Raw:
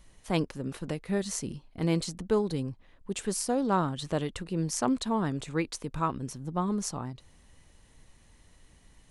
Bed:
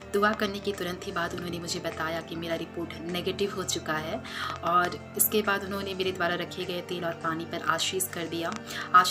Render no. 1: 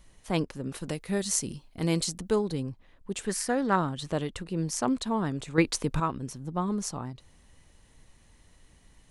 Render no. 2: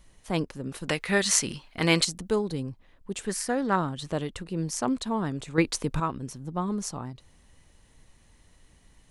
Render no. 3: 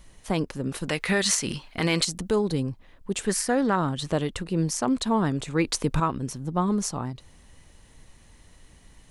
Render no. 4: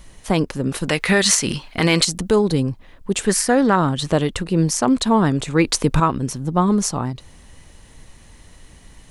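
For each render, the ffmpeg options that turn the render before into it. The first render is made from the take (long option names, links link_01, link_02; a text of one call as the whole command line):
ffmpeg -i in.wav -filter_complex "[0:a]asettb=1/sr,asplit=3[link_01][link_02][link_03];[link_01]atrim=end=0.754[link_04];[link_02]atrim=start=0.75:end=2.36,asetpts=PTS-STARTPTS,afade=type=in:duration=0.004:curve=qsin,afade=type=out:start_time=1.606:duration=0.004:curve=qsin,highshelf=frequency=4100:gain=9.5[link_05];[link_03]atrim=start=2.356[link_06];[link_04][link_05]acrossfade=duration=0.004:curve1=hsin:curve2=qsin[link_07];[link_07][link_06]acrossfade=duration=0.004:curve1=qsin:curve2=hsin,asettb=1/sr,asplit=3[link_08][link_09][link_10];[link_08]atrim=end=3.294[link_11];[link_09]atrim=start=3.29:end=3.76,asetpts=PTS-STARTPTS,afade=type=in:duration=0.004:curve=qsin,afade=type=out:start_time=0.466:duration=0.004:curve=qsin,equalizer=frequency=1800:width=2.3:gain=14.5[link_12];[link_10]atrim=start=3.756[link_13];[link_11][link_12]acrossfade=duration=0.004:curve1=hsin:curve2=qsin[link_14];[link_14][link_13]acrossfade=duration=0.004:curve1=qsin:curve2=hsin,asplit=3[link_15][link_16][link_17];[link_15]atrim=end=5.582[link_18];[link_16]atrim=start=5.578:end=6.002,asetpts=PTS-STARTPTS,volume=7.5dB[link_19];[link_17]atrim=start=5.998[link_20];[link_18][link_19]acrossfade=duration=0.004:curve1=hsin:curve2=hsin[link_21];[link_21][link_20]acrossfade=duration=0.004:curve1=hsin:curve2=hsin" out.wav
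ffmpeg -i in.wav -filter_complex "[0:a]asettb=1/sr,asplit=3[link_01][link_02][link_03];[link_01]atrim=end=0.894[link_04];[link_02]atrim=start=0.89:end=2.05,asetpts=PTS-STARTPTS,afade=type=in:duration=0.004:curve=qsin,afade=type=out:start_time=1.156:duration=0.004:curve=qsin,equalizer=frequency=1900:width=0.39:gain=14.5[link_05];[link_03]atrim=start=2.046[link_06];[link_04][link_05]acrossfade=duration=0.004:curve1=hsin:curve2=qsin[link_07];[link_07][link_06]acrossfade=duration=0.004:curve1=qsin:curve2=hsin" out.wav
ffmpeg -i in.wav -af "acontrast=35,alimiter=limit=-13dB:level=0:latency=1:release=136" out.wav
ffmpeg -i in.wav -af "volume=7.5dB" out.wav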